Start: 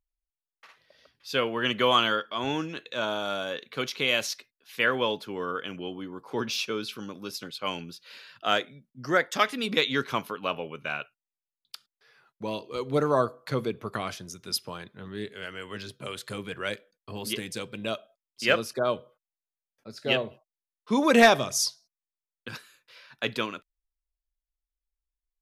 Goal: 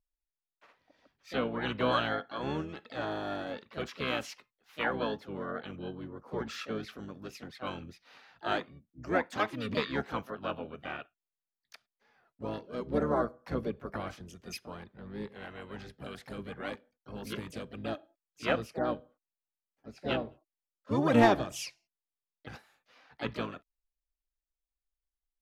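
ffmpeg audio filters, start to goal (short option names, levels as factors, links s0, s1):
-filter_complex "[0:a]asplit=3[s0][s1][s2];[s1]asetrate=22050,aresample=44100,atempo=2,volume=0.562[s3];[s2]asetrate=55563,aresample=44100,atempo=0.793701,volume=0.447[s4];[s0][s3][s4]amix=inputs=3:normalize=0,highshelf=f=2400:g=-11,volume=0.501"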